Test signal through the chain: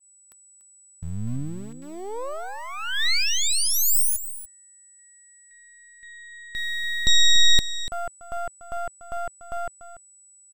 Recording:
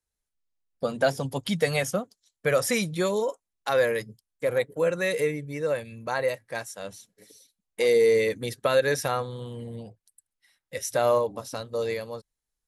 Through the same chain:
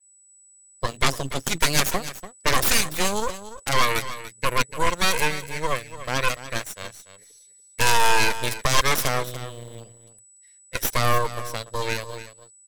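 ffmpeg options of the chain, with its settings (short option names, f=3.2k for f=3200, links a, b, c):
-filter_complex "[0:a]equalizer=f=125:t=o:w=1:g=6,equalizer=f=250:t=o:w=1:g=-7,equalizer=f=500:t=o:w=1:g=4,equalizer=f=1k:t=o:w=1:g=-4,equalizer=f=2k:t=o:w=1:g=9,equalizer=f=4k:t=o:w=1:g=4,equalizer=f=8k:t=o:w=1:g=8,aeval=exprs='0.501*(cos(1*acos(clip(val(0)/0.501,-1,1)))-cos(1*PI/2))+0.251*(cos(3*acos(clip(val(0)/0.501,-1,1)))-cos(3*PI/2))+0.00316*(cos(5*acos(clip(val(0)/0.501,-1,1)))-cos(5*PI/2))+0.126*(cos(6*acos(clip(val(0)/0.501,-1,1)))-cos(6*PI/2))':c=same,asplit=2[a][b];[b]aeval=exprs='val(0)*gte(abs(val(0)),0.0188)':c=same,volume=-5.5dB[c];[a][c]amix=inputs=2:normalize=0,aeval=exprs='val(0)+0.00316*sin(2*PI*7900*n/s)':c=same,asplit=2[d][e];[e]aecho=0:1:290:0.211[f];[d][f]amix=inputs=2:normalize=0,adynamicequalizer=threshold=0.02:dfrequency=7200:dqfactor=0.7:tfrequency=7200:tqfactor=0.7:attack=5:release=100:ratio=0.375:range=2:mode=boostabove:tftype=highshelf,volume=-2.5dB"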